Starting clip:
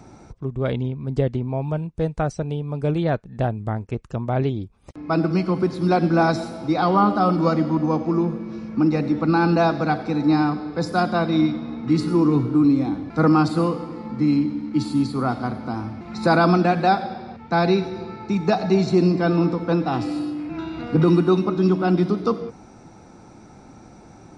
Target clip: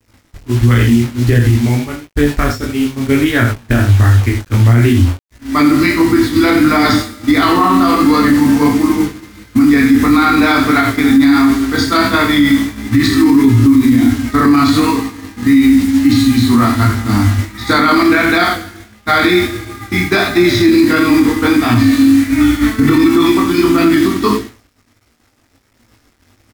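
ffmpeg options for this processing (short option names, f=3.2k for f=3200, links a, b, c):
-filter_complex "[0:a]firequalizer=gain_entry='entry(120,0);entry(170,-29);entry(260,-2);entry(590,-20);entry(1900,5);entry(3100,-3)':delay=0.05:min_phase=1,aecho=1:1:31|56|75:0.562|0.141|0.422,asplit=2[a][b];[b]acompressor=threshold=-31dB:ratio=6,volume=-3dB[c];[a][c]amix=inputs=2:normalize=0,acrusher=bits=6:mix=0:aa=0.000001,flanger=delay=16:depth=4.3:speed=1.6,agate=range=-33dB:threshold=-28dB:ratio=3:detection=peak,asetrate=40517,aresample=44100,alimiter=level_in=21.5dB:limit=-1dB:release=50:level=0:latency=1,volume=-1dB"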